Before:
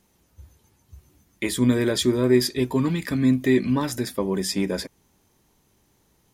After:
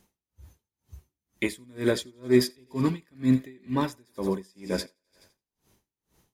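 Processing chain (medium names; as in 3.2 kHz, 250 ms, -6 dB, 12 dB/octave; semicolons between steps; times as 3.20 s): thinning echo 85 ms, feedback 63%, high-pass 320 Hz, level -11.5 dB; logarithmic tremolo 2.1 Hz, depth 34 dB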